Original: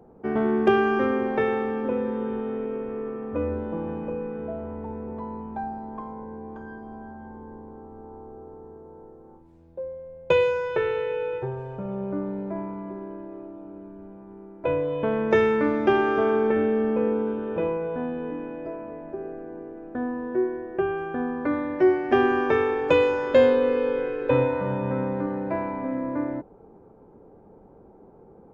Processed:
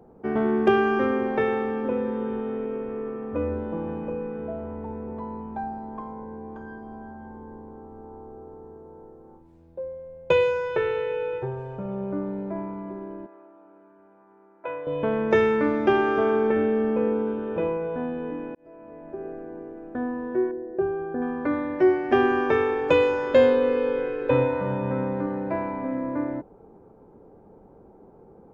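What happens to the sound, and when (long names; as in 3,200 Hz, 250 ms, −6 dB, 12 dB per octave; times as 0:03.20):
0:13.26–0:14.87: resonant band-pass 1,400 Hz, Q 1.1
0:18.55–0:19.28: fade in
0:20.51–0:21.22: spectral envelope exaggerated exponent 1.5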